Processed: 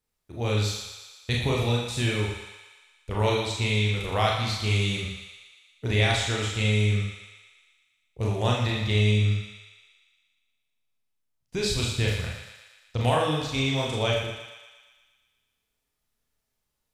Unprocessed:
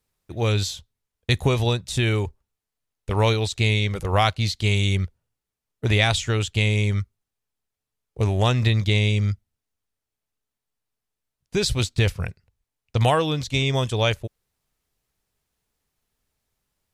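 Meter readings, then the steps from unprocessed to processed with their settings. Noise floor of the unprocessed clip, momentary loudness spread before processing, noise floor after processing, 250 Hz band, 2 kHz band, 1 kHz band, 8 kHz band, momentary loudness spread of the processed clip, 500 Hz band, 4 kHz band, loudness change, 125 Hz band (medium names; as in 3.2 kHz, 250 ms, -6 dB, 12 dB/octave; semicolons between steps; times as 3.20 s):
under -85 dBFS, 12 LU, -80 dBFS, -2.5 dB, -2.5 dB, -3.0 dB, -2.5 dB, 15 LU, -3.0 dB, -2.5 dB, -3.5 dB, -4.0 dB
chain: thinning echo 117 ms, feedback 65%, high-pass 560 Hz, level -8 dB; Schroeder reverb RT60 0.5 s, combs from 26 ms, DRR -2 dB; trim -7.5 dB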